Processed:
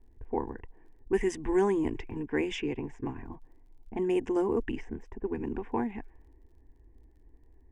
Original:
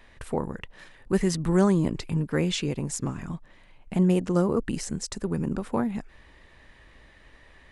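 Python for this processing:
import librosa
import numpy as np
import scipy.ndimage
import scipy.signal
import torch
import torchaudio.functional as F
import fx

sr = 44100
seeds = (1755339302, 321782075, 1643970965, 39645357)

y = fx.env_lowpass(x, sr, base_hz=310.0, full_db=-20.0)
y = scipy.signal.sosfilt(scipy.signal.butter(2, 6100.0, 'lowpass', fs=sr, output='sos'), y)
y = fx.fixed_phaser(y, sr, hz=860.0, stages=8)
y = fx.dmg_crackle(y, sr, seeds[0], per_s=35.0, level_db=-61.0)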